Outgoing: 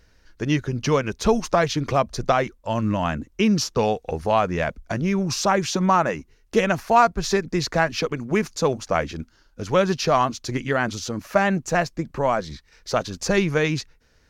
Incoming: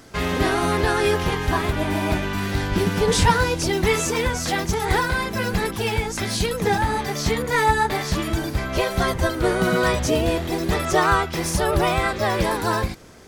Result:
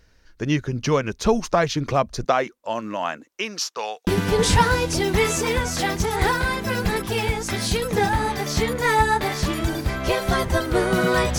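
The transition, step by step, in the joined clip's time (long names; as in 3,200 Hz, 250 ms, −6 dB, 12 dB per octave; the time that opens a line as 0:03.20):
outgoing
0:02.24–0:04.07: high-pass filter 200 Hz → 1,100 Hz
0:04.07: continue with incoming from 0:02.76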